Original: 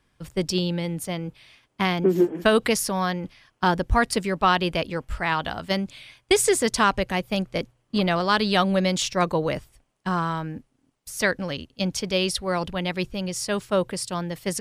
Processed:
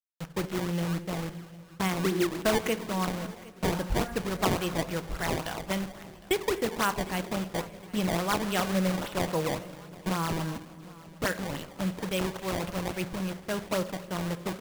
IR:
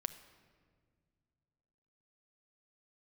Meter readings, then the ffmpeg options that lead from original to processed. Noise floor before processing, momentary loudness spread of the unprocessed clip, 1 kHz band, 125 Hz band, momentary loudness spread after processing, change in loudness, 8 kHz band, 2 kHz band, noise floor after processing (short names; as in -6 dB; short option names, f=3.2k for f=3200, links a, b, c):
-70 dBFS, 11 LU, -7.5 dB, -3.5 dB, 9 LU, -6.5 dB, -8.5 dB, -7.5 dB, -49 dBFS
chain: -filter_complex "[0:a]asplit=2[a][b];[b]acompressor=threshold=-30dB:ratio=5,volume=1dB[c];[a][c]amix=inputs=2:normalize=0,aresample=8000,aresample=44100,aresample=16000,acrusher=bits=4:mix=0:aa=0.000001,aresample=44100[d];[1:a]atrim=start_sample=2205[e];[d][e]afir=irnorm=-1:irlink=0,acrusher=samples=19:mix=1:aa=0.000001:lfo=1:lforange=30.4:lforate=3.6,flanger=delay=6.5:depth=1.7:regen=-87:speed=1:shape=sinusoidal,aecho=1:1:759|1518|2277:0.0891|0.0419|0.0197,volume=-3.5dB"